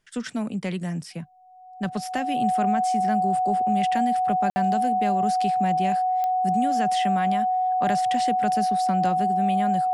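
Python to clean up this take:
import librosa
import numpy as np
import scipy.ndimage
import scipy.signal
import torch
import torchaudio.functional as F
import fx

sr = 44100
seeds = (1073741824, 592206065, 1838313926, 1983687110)

y = fx.fix_declick_ar(x, sr, threshold=10.0)
y = fx.notch(y, sr, hz=740.0, q=30.0)
y = fx.fix_ambience(y, sr, seeds[0], print_start_s=1.24, print_end_s=1.74, start_s=4.5, end_s=4.56)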